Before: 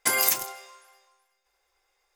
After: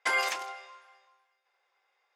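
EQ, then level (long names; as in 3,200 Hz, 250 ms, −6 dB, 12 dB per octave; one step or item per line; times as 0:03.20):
band-pass filter 570–3,200 Hz
+1.0 dB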